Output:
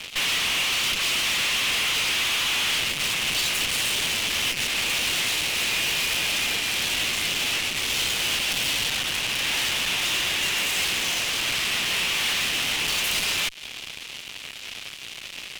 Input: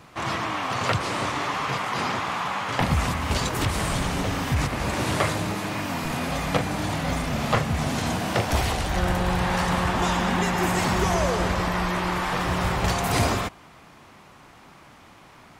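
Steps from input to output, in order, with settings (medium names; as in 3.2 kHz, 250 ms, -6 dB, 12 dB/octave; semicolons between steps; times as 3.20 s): compression 3:1, threshold -32 dBFS, peak gain reduction 12 dB; fuzz box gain 39 dB, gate -47 dBFS; resonant high-pass 2.8 kHz, resonance Q 2.6; valve stage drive 21 dB, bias 0.65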